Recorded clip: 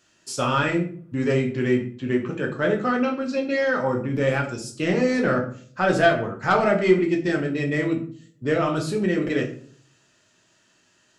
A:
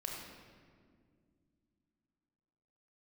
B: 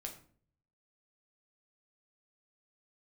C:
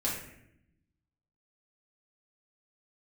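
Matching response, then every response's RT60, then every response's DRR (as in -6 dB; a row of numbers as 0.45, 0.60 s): B; 2.1, 0.50, 0.75 s; -1.5, 1.0, -6.5 dB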